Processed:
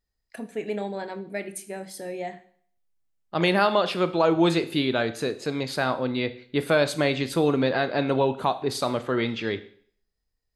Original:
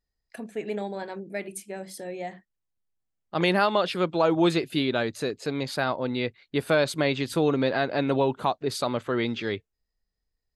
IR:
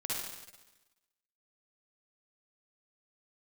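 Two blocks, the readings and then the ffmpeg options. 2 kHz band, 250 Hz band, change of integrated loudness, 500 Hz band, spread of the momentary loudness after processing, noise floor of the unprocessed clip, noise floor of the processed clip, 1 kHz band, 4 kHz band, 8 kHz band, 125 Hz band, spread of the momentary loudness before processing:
+1.5 dB, +1.0 dB, +1.0 dB, +1.5 dB, 13 LU, −82 dBFS, −79 dBFS, +1.5 dB, +1.5 dB, +1.5 dB, +1.0 dB, 14 LU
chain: -filter_complex "[0:a]asplit=2[link_01][link_02];[1:a]atrim=start_sample=2205,asetrate=88200,aresample=44100[link_03];[link_02][link_03]afir=irnorm=-1:irlink=0,volume=-7dB[link_04];[link_01][link_04]amix=inputs=2:normalize=0"

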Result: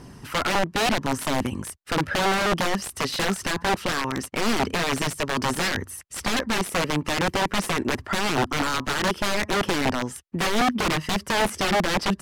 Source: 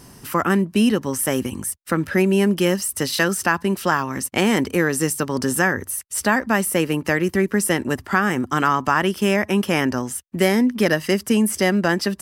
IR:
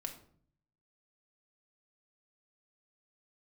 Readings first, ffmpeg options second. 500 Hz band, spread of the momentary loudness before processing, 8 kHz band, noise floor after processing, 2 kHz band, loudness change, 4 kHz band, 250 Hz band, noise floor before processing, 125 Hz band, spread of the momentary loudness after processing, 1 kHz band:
−6.0 dB, 5 LU, −5.5 dB, −47 dBFS, −3.5 dB, −4.5 dB, +2.0 dB, −8.0 dB, −47 dBFS, −5.5 dB, 5 LU, −1.0 dB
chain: -af "aphaser=in_gain=1:out_gain=1:delay=2.8:decay=0.26:speed=0.83:type=triangular,aeval=exprs='(mod(5.96*val(0)+1,2)-1)/5.96':channel_layout=same,aemphasis=mode=reproduction:type=50fm"

